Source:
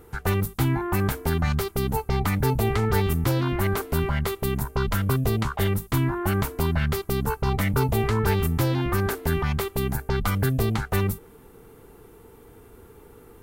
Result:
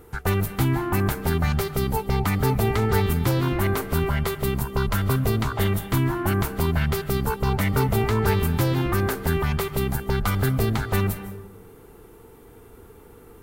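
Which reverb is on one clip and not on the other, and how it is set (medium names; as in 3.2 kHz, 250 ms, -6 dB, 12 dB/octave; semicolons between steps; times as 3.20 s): algorithmic reverb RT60 0.94 s, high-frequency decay 0.55×, pre-delay 115 ms, DRR 10 dB; trim +1 dB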